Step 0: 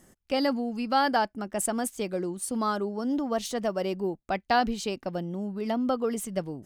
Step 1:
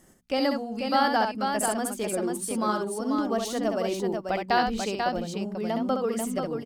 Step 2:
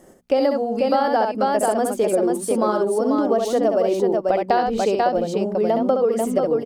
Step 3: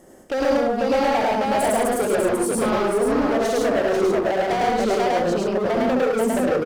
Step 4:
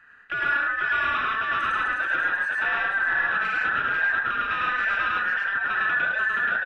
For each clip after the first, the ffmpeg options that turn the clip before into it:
-af "bandreject=f=60:t=h:w=6,bandreject=f=120:t=h:w=6,bandreject=f=180:t=h:w=6,bandreject=f=240:t=h:w=6,aecho=1:1:66|490:0.531|0.562"
-af "equalizer=f=510:w=0.76:g=13.5,acompressor=threshold=0.141:ratio=6,volume=1.26"
-af "volume=11.2,asoftclip=hard,volume=0.0891,aecho=1:1:105|137:1|0.501"
-af "afftfilt=real='real(if(between(b,1,1012),(2*floor((b-1)/92)+1)*92-b,b),0)':imag='imag(if(between(b,1,1012),(2*floor((b-1)/92)+1)*92-b,b),0)*if(between(b,1,1012),-1,1)':win_size=2048:overlap=0.75,lowpass=f=2500:t=q:w=9.1,volume=0.376"

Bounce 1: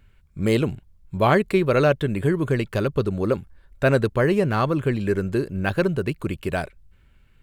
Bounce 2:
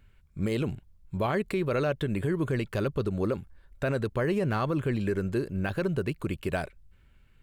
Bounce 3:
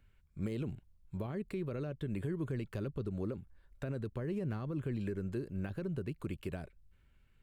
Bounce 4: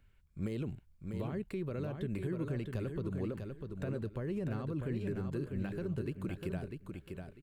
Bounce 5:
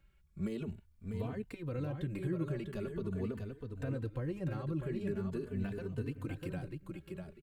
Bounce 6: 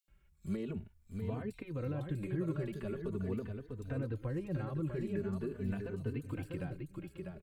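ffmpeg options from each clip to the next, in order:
-af "alimiter=limit=0.168:level=0:latency=1:release=70,volume=0.668"
-filter_complex "[0:a]acrossover=split=380[s0][s1];[s1]acompressor=threshold=0.0112:ratio=6[s2];[s0][s2]amix=inputs=2:normalize=0,volume=0.422"
-af "aecho=1:1:647|1294|1941:0.531|0.122|0.0281"
-filter_complex "[0:a]asplit=2[s0][s1];[s1]adelay=3.2,afreqshift=0.43[s2];[s0][s2]amix=inputs=2:normalize=1,volume=1.33"
-filter_complex "[0:a]acrossover=split=3900[s0][s1];[s0]adelay=80[s2];[s2][s1]amix=inputs=2:normalize=0"

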